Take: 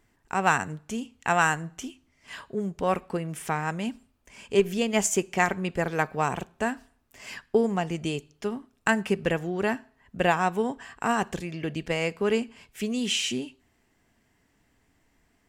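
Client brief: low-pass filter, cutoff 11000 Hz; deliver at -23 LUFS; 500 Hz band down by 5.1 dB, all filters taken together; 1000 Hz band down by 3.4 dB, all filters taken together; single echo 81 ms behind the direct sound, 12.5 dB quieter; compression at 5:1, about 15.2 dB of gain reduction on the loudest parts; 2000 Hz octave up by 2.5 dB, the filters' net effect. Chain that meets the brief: LPF 11000 Hz; bell 500 Hz -6 dB; bell 1000 Hz -3.5 dB; bell 2000 Hz +5 dB; compressor 5:1, threshold -35 dBFS; echo 81 ms -12.5 dB; gain +16 dB

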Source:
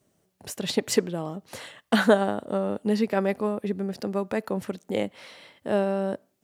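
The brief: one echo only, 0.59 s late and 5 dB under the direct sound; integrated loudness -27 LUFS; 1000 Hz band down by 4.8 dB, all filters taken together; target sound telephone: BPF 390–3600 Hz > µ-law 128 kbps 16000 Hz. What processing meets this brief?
BPF 390–3600 Hz; bell 1000 Hz -6.5 dB; echo 0.59 s -5 dB; gain +4 dB; µ-law 128 kbps 16000 Hz

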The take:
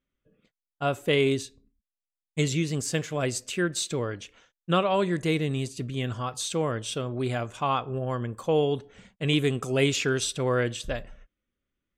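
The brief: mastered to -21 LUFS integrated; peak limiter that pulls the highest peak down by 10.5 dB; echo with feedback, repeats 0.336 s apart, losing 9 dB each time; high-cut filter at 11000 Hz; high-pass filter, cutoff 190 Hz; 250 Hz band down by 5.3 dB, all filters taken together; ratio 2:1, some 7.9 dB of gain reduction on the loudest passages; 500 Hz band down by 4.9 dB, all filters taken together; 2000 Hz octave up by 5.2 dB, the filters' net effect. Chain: HPF 190 Hz; LPF 11000 Hz; bell 250 Hz -3.5 dB; bell 500 Hz -5 dB; bell 2000 Hz +7 dB; compressor 2:1, threshold -33 dBFS; limiter -24.5 dBFS; feedback echo 0.336 s, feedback 35%, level -9 dB; gain +15.5 dB

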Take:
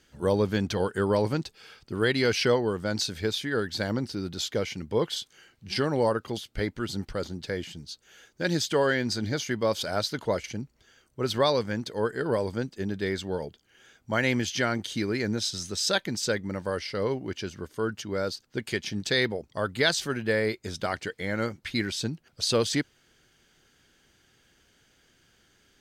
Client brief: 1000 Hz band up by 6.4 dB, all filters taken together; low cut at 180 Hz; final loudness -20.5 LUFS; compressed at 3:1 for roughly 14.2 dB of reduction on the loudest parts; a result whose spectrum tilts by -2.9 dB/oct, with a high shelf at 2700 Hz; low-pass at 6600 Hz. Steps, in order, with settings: HPF 180 Hz; LPF 6600 Hz; bell 1000 Hz +7 dB; high shelf 2700 Hz +6.5 dB; compressor 3:1, threshold -35 dBFS; gain +16 dB

